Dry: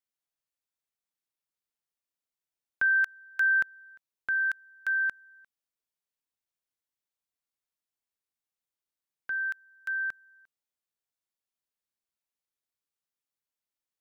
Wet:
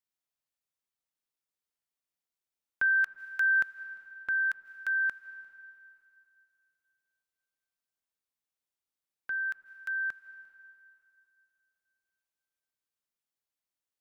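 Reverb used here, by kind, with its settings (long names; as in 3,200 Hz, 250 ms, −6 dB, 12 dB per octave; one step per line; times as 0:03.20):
comb and all-pass reverb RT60 2.6 s, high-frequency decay 0.95×, pre-delay 120 ms, DRR 14.5 dB
level −1.5 dB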